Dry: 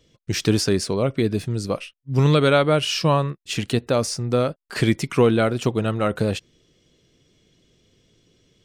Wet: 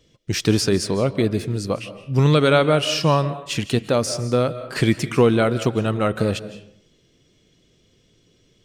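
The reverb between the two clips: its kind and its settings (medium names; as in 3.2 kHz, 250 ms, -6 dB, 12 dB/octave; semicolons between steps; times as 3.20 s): algorithmic reverb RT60 0.69 s, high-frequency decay 0.6×, pre-delay 120 ms, DRR 13 dB; trim +1 dB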